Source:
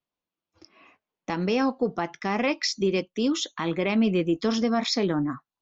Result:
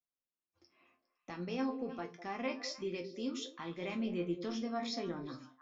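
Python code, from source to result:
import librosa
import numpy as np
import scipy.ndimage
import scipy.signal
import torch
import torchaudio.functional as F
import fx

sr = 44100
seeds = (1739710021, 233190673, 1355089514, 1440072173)

y = fx.resonator_bank(x, sr, root=41, chord='sus4', decay_s=0.23)
y = fx.echo_stepped(y, sr, ms=102, hz=190.0, octaves=1.4, feedback_pct=70, wet_db=-5.5)
y = y * 10.0 ** (-4.0 / 20.0)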